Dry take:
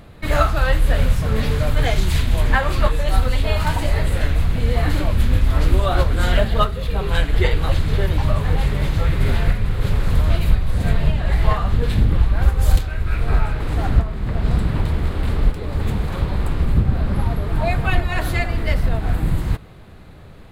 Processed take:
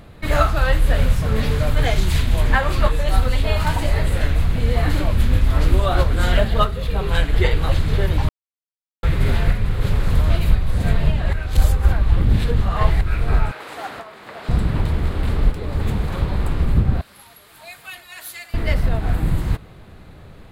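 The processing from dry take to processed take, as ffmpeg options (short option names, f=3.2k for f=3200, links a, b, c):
-filter_complex "[0:a]asettb=1/sr,asplit=3[a][b][c];[a]atrim=end=13.514[d];[b]atrim=start=13.51:end=14.49,asetpts=PTS-STARTPTS,afade=t=in:d=0.004:c=qsin,afade=t=out:st=0.976:d=0.004:c=qsin,highpass=590[e];[c]atrim=start=14.486[f];[d][e]acrossfade=d=0.004:c1=hsin:c2=qsin[g];[g][f]acrossfade=d=0.004:c1=qsin:c2=hsin,asettb=1/sr,asplit=3[h][i][j];[h]atrim=end=17.014[k];[i]atrim=start=17.01:end=18.54,asetpts=PTS-STARTPTS,afade=t=in:d=0.004:c=qsin,afade=t=out:st=1.526:d=0.004:c=qsin,aderivative[l];[j]atrim=start=18.536[m];[k][l]acrossfade=d=0.004:c1=hsin:c2=qsin[n];[n][m]acrossfade=d=0.004:c1=qsin:c2=hsin,asplit=5[o][p][q][r][s];[o]atrim=end=8.29,asetpts=PTS-STARTPTS,afade=t=out:st=8.286:d=0.004:c=hsin[t];[p]atrim=start=8.29:end=9.03,asetpts=PTS-STARTPTS,volume=0[u];[q]atrim=start=9.03:end=11.332,asetpts=PTS-STARTPTS,afade=t=in:d=0.004:c=hsin[v];[r]atrim=start=11.328:end=13.012,asetpts=PTS-STARTPTS,areverse[w];[s]atrim=start=13.008[x];[t][u][v]concat=n=3:v=0:a=1[y];[y][w]acrossfade=d=0.004:c1=hsin:c2=hsin[z];[z][x]acrossfade=d=0.004:c1=hsin:c2=hsin"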